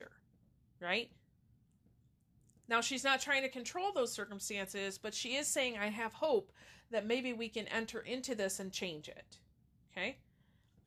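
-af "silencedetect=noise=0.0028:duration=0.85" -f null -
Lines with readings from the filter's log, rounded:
silence_start: 1.06
silence_end: 2.50 | silence_duration: 1.44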